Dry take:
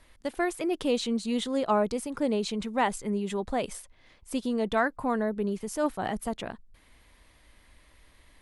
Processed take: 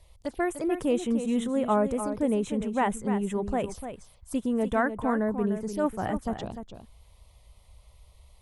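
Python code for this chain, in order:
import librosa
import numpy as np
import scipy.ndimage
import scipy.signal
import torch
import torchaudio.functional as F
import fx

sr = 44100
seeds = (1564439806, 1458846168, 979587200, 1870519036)

p1 = fx.peak_eq(x, sr, hz=75.0, db=9.5, octaves=2.0)
p2 = fx.env_phaser(p1, sr, low_hz=230.0, high_hz=4600.0, full_db=-26.0)
y = p2 + fx.echo_single(p2, sr, ms=298, db=-9.5, dry=0)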